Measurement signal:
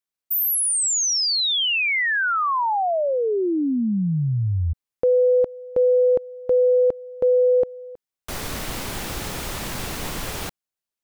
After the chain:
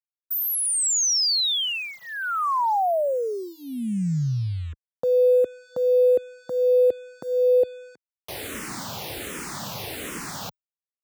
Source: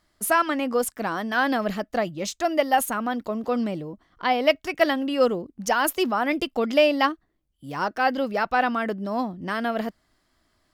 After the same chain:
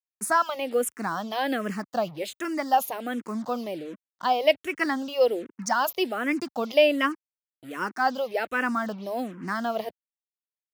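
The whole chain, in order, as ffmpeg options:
-filter_complex "[0:a]acrusher=bits=6:mix=0:aa=0.5,highpass=120,asplit=2[a][b];[b]afreqshift=-1.3[c];[a][c]amix=inputs=2:normalize=1"

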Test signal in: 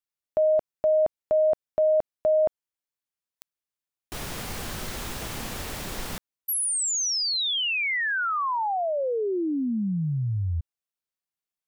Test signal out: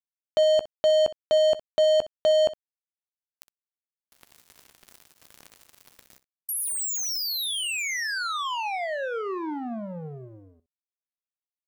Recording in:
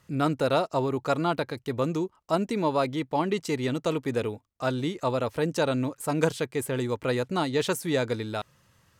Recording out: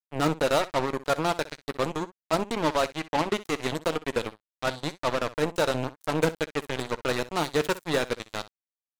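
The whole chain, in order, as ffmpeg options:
-filter_complex "[0:a]highpass=f=110:p=1,acrusher=bits=3:mix=0:aa=0.5,asplit=2[a][b];[b]aecho=0:1:13|62:0.141|0.141[c];[a][c]amix=inputs=2:normalize=0"

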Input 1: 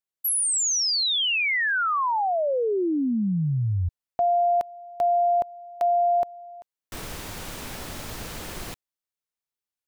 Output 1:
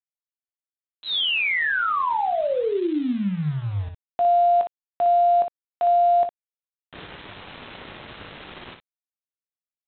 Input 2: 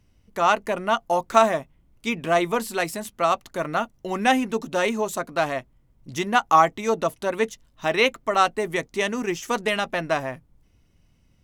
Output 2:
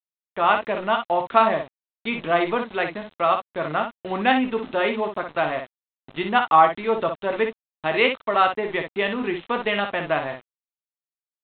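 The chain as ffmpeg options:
-af "highpass=f=130:p=1,agate=range=-33dB:threshold=-41dB:ratio=3:release=50:detection=rms,aresample=8000,aeval=exprs='val(0)*gte(abs(val(0)),0.0158)':c=same,aresample=44100,aecho=1:1:20|59:0.299|0.447"

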